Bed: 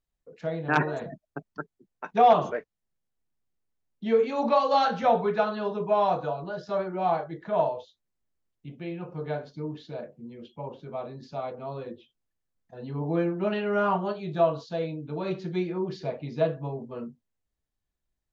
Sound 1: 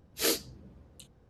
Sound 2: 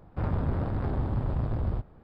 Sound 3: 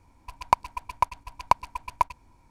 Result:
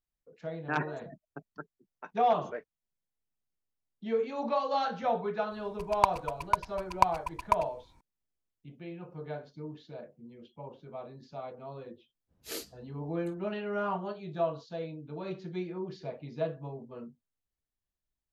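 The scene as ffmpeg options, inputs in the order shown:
-filter_complex "[0:a]volume=-7.5dB[a];[3:a]atrim=end=2.5,asetpts=PTS-STARTPTS,volume=-3dB,afade=t=in:d=0.004:c=hsin,afade=t=out:st=2.496:d=0.004:c=hsin,adelay=5510[b];[1:a]atrim=end=1.29,asetpts=PTS-STARTPTS,volume=-11.5dB,afade=t=in:d=0.05,afade=t=out:st=1.24:d=0.05,adelay=12270[c];[a][b][c]amix=inputs=3:normalize=0"

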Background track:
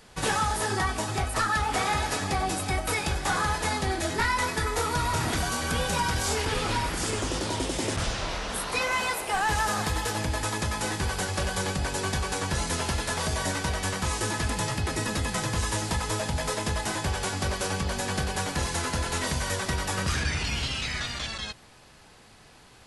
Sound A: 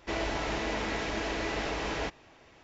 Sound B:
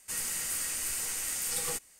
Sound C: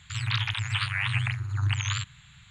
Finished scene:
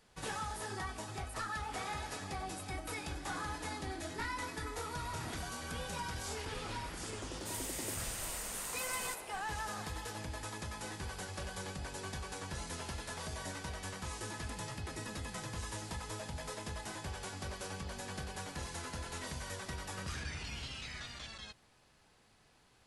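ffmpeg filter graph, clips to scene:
-filter_complex "[0:a]volume=-14dB[a];[1:a]asuperpass=centerf=290:order=4:qfactor=7.7,atrim=end=2.63,asetpts=PTS-STARTPTS,volume=-6dB,afade=t=in:d=0.004:c=hsin,afade=t=out:st=2.626:d=0.004:c=hsin,adelay=2620[b];[2:a]atrim=end=1.99,asetpts=PTS-STARTPTS,volume=-9dB,afade=t=in:d=0.004:c=hsin,afade=t=out:st=1.986:d=0.004:c=hsin,adelay=7370[c];[a][b][c]amix=inputs=3:normalize=0"

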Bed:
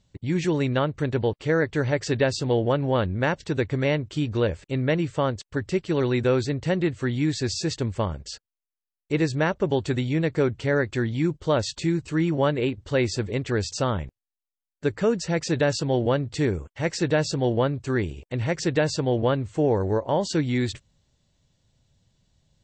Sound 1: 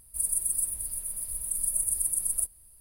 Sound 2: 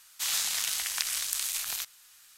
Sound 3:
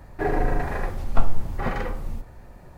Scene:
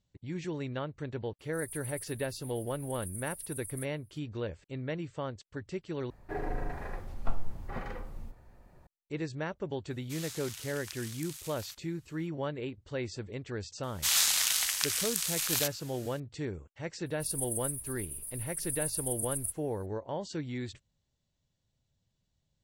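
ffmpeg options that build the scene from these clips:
-filter_complex "[1:a]asplit=2[a][b];[2:a]asplit=2[c][d];[0:a]volume=-13dB[e];[a]highshelf=f=11k:g=2.5[f];[d]dynaudnorm=f=120:g=3:m=8dB[g];[e]asplit=2[h][i];[h]atrim=end=6.104[j];[3:a]atrim=end=2.77,asetpts=PTS-STARTPTS,volume=-12dB[k];[i]atrim=start=8.866[l];[f]atrim=end=2.8,asetpts=PTS-STARTPTS,volume=-17dB,afade=t=in:d=0.004:c=hsin,afade=t=out:st=2.796:d=0.004:c=hsin,adelay=1390[m];[c]atrim=end=2.37,asetpts=PTS-STARTPTS,volume=-14.5dB,afade=t=in:d=0.004:c=hsin,afade=t=out:st=2.366:d=0.004:c=hsin,adelay=9900[n];[g]atrim=end=2.37,asetpts=PTS-STARTPTS,volume=-4dB,afade=t=in:d=0.004:c=hsin,afade=t=out:st=2.366:d=0.004:c=hsin,adelay=13830[o];[b]atrim=end=2.8,asetpts=PTS-STARTPTS,volume=-7.5dB,afade=t=in:d=0.004:c=hsin,afade=t=out:st=2.796:d=0.004:c=hsin,adelay=17060[p];[j][k]acrossfade=d=0.004:c1=hsin:c2=hsin[q];[q][l]acrossfade=d=0.004:c1=hsin:c2=hsin[r];[r][m][n][o][p]amix=inputs=5:normalize=0"

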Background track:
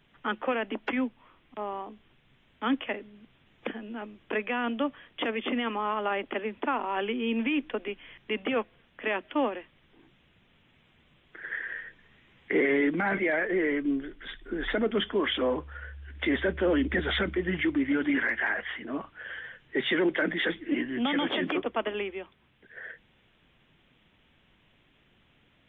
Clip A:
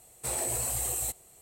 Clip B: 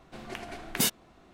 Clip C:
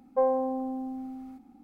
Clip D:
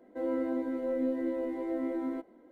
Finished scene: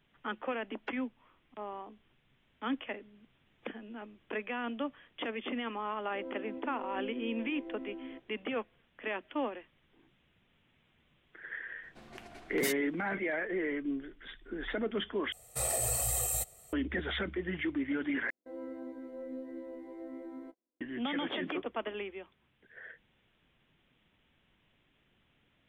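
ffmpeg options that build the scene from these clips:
-filter_complex "[4:a]asplit=2[a][b];[0:a]volume=-7dB[c];[a]lowpass=f=1.5k:p=1[d];[2:a]acontrast=27[e];[1:a]aecho=1:1:1.6:0.75[f];[b]agate=range=-24dB:threshold=-47dB:ratio=16:release=100:detection=peak[g];[c]asplit=3[h][i][j];[h]atrim=end=15.324[k];[f]atrim=end=1.41,asetpts=PTS-STARTPTS,volume=-2.5dB[l];[i]atrim=start=16.726:end=18.304[m];[g]atrim=end=2.51,asetpts=PTS-STARTPTS,volume=-11.5dB[n];[j]atrim=start=20.806[o];[d]atrim=end=2.51,asetpts=PTS-STARTPTS,volume=-10.5dB,afade=t=in:d=0.004:c=hsin,afade=t=out:st=2.506:d=0.004:c=hsin,adelay=5980[p];[e]atrim=end=1.33,asetpts=PTS-STARTPTS,volume=-15dB,afade=t=in:d=0.004:c=hsin,afade=t=out:st=1.326:d=0.004:c=hsin,adelay=11830[q];[k][l]acrossfade=d=0.004:c1=hsin:c2=hsin[r];[r][m]acrossfade=d=0.004:c1=hsin:c2=hsin[s];[s][n]acrossfade=d=0.004:c1=hsin:c2=hsin[t];[t][o]acrossfade=d=0.004:c1=hsin:c2=hsin[u];[u][p][q]amix=inputs=3:normalize=0"

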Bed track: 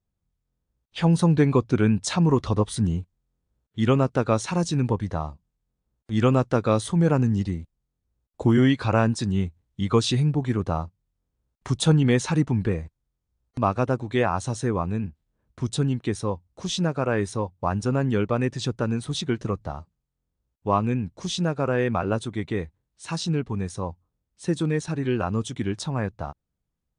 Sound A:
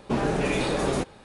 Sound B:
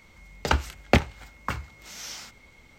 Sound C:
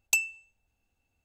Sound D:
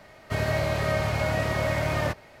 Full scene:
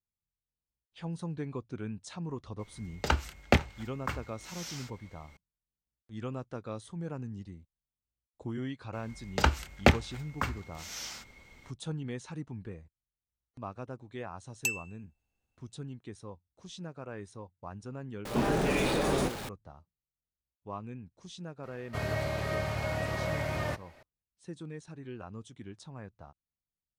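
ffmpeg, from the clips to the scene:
-filter_complex "[2:a]asplit=2[a][b];[0:a]volume=-18.5dB[c];[1:a]aeval=exprs='val(0)+0.5*0.0282*sgn(val(0))':c=same[d];[a]atrim=end=2.78,asetpts=PTS-STARTPTS,volume=-4.5dB,afade=t=in:d=0.004:c=hsin,afade=t=out:st=2.776:d=0.004:c=hsin,adelay=2590[e];[b]atrim=end=2.78,asetpts=PTS-STARTPTS,volume=-2dB,afade=t=in:d=0.004:c=hsin,afade=t=out:st=2.776:d=0.004:c=hsin,adelay=8930[f];[3:a]atrim=end=1.24,asetpts=PTS-STARTPTS,volume=-6dB,afade=t=in:d=0.004:c=hsin,afade=t=out:st=1.236:d=0.004:c=hsin,adelay=14520[g];[d]atrim=end=1.24,asetpts=PTS-STARTPTS,volume=-4.5dB,afade=t=in:d=0.004:c=hsin,afade=t=out:st=1.236:d=0.004:c=hsin,adelay=18250[h];[4:a]atrim=end=2.4,asetpts=PTS-STARTPTS,volume=-7dB,afade=t=in:d=0.004:c=hsin,afade=t=out:st=2.396:d=0.004:c=hsin,adelay=21630[i];[c][e][f][g][h][i]amix=inputs=6:normalize=0"

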